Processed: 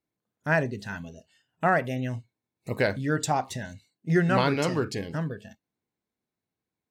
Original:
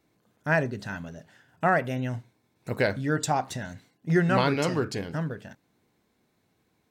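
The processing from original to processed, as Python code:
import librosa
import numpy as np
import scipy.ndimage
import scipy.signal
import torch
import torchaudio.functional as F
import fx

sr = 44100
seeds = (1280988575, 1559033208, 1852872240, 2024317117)

y = fx.noise_reduce_blind(x, sr, reduce_db=18)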